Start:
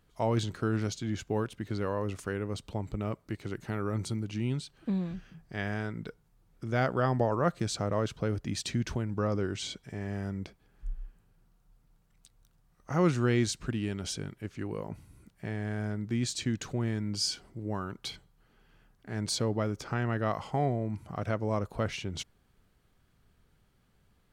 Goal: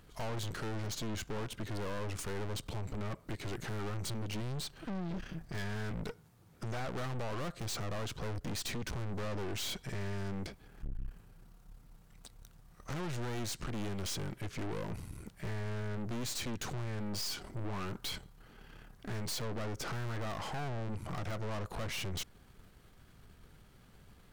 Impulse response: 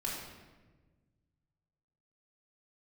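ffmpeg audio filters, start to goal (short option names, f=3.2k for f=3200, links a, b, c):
-filter_complex "[0:a]acompressor=threshold=-35dB:ratio=4,asettb=1/sr,asplit=3[a][b][c];[a]atrim=end=5.914[d];[b]atrim=start=5.91:end=6.9,asetpts=PTS-STARTPTS,afade=t=in:d=0.004:c=qsin,afade=t=out:st=0.986:d=0.004:c=qsin,highpass=f=67:w=0.5412,highpass=f=67:w=1.3066[e];[c]atrim=start=6.896[f];[d][e]acrossfade=d=0.004:c1=hsin:c2=qsin[g];[g][f]acrossfade=d=0.004:c1=qsin:c2=hsin,aeval=exprs='(tanh(316*val(0)+0.75)-tanh(0.75))/316':c=same,volume=13dB"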